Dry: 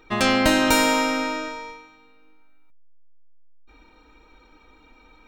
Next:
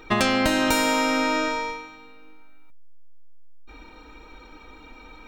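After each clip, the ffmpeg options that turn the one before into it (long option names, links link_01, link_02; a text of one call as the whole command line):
ffmpeg -i in.wav -af "acompressor=threshold=-26dB:ratio=6,volume=7.5dB" out.wav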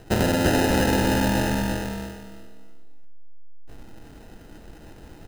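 ffmpeg -i in.wav -filter_complex "[0:a]acrusher=samples=39:mix=1:aa=0.000001,asplit=2[link_01][link_02];[link_02]aecho=0:1:342|684|1026:0.631|0.145|0.0334[link_03];[link_01][link_03]amix=inputs=2:normalize=0" out.wav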